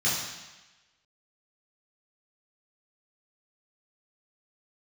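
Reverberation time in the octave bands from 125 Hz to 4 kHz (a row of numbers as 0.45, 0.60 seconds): 1.0, 1.1, 1.0, 1.2, 1.2, 1.2 seconds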